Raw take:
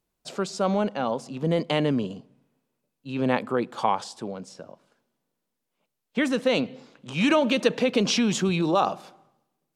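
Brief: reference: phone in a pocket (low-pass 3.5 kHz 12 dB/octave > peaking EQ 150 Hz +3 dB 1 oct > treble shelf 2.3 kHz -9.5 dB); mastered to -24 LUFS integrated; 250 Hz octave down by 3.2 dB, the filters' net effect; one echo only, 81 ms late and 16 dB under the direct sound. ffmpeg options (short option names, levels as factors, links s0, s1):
-af "lowpass=3500,equalizer=f=150:t=o:w=1:g=3,equalizer=f=250:t=o:g=-5.5,highshelf=f=2300:g=-9.5,aecho=1:1:81:0.158,volume=1.5"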